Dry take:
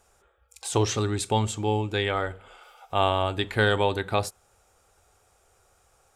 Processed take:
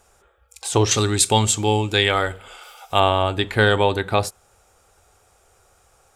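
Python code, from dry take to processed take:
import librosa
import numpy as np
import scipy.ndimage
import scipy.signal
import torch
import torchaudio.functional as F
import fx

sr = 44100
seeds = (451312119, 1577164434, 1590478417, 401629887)

y = fx.high_shelf(x, sr, hz=2800.0, db=11.0, at=(0.91, 3.0))
y = y * librosa.db_to_amplitude(5.5)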